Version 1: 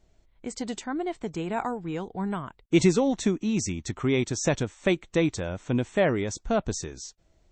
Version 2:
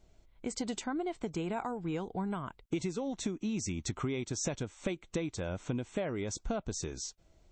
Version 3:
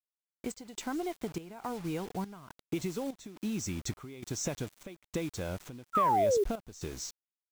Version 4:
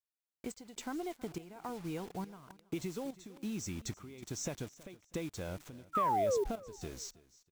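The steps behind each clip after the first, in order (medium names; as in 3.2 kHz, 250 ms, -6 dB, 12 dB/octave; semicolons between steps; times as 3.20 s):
band-stop 1.8 kHz, Q 11; compression 12:1, threshold -31 dBFS, peak gain reduction 17 dB
painted sound fall, 5.93–6.44 s, 380–1400 Hz -26 dBFS; word length cut 8-bit, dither none; trance gate "xxxxxx...x" 174 bpm -12 dB
feedback delay 323 ms, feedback 28%, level -20.5 dB; trim -4.5 dB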